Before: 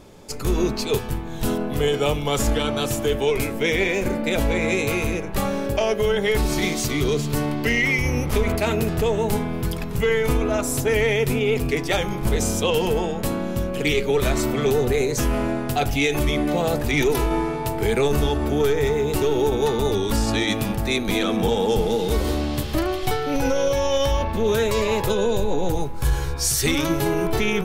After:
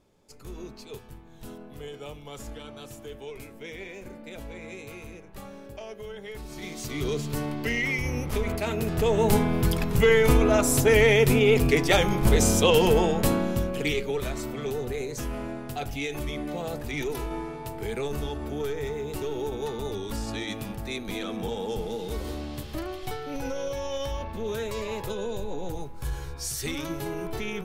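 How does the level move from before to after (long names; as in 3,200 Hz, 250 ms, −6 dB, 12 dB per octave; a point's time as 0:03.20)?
0:06.46 −19 dB
0:07.06 −7 dB
0:08.75 −7 dB
0:09.31 +1.5 dB
0:13.29 +1.5 dB
0:14.33 −11 dB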